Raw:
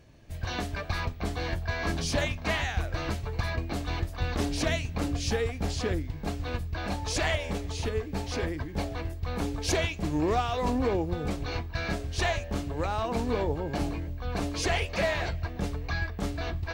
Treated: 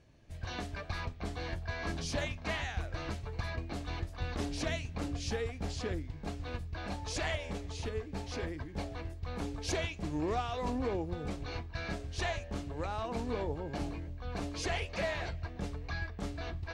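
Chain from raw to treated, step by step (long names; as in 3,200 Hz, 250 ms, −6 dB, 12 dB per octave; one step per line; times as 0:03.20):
low-pass filter 10,000 Hz 12 dB per octave
level −7 dB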